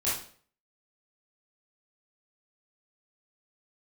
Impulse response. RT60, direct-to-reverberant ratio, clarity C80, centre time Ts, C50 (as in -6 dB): 0.50 s, -9.5 dB, 9.0 dB, 47 ms, 2.0 dB